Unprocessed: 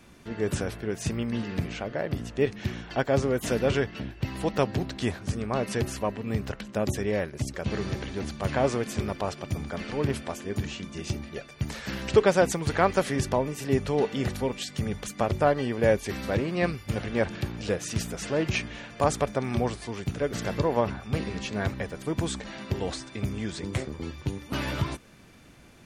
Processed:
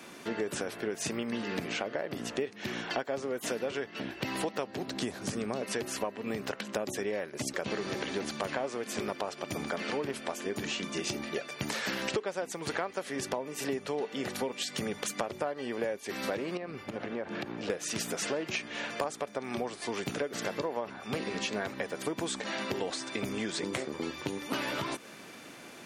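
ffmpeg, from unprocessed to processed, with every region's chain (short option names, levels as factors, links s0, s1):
-filter_complex "[0:a]asettb=1/sr,asplit=3[s0][s1][s2];[s0]atrim=end=4.884[s3];[s1]atrim=start=4.88:end=5.62,asetpts=PTS-STARTPTS,afade=t=in:d=0.004:c=qsin,afade=t=out:st=0.736:d=0.004:c=qsin,bass=f=250:g=5,treble=f=4000:g=8,acrossover=split=700|1600|3500[s4][s5][s6][s7];[s4]acompressor=threshold=0.0562:ratio=3[s8];[s5]acompressor=threshold=0.00316:ratio=3[s9];[s6]acompressor=threshold=0.00355:ratio=3[s10];[s7]acompressor=threshold=0.00398:ratio=3[s11];[s8][s9][s10][s11]amix=inputs=4:normalize=0[s12];[s2]atrim=start=5.616[s13];[s3][s12]acrossfade=d=0.004:c1=hsin:c2=qsin[s14];[s14][s13]acrossfade=d=0.004:c1=qsin:c2=hsin,asettb=1/sr,asplit=3[s15][s16][s17];[s15]atrim=end=16.574[s18];[s16]atrim=start=16.57:end=17.7,asetpts=PTS-STARTPTS,afade=t=in:d=0.004:c=qsin,afade=t=out:st=1.126:d=0.004:c=qsin,lowpass=f=1400:p=1,acompressor=threshold=0.0178:ratio=16:attack=3.2:release=140:knee=1:detection=peak[s19];[s17]atrim=start=17.696[s20];[s18][s19]acrossfade=d=0.004:c1=hsin:c2=qsin[s21];[s21][s20]acrossfade=d=0.004:c1=qsin:c2=hsin,highpass=290,acompressor=threshold=0.0126:ratio=12,volume=2.51"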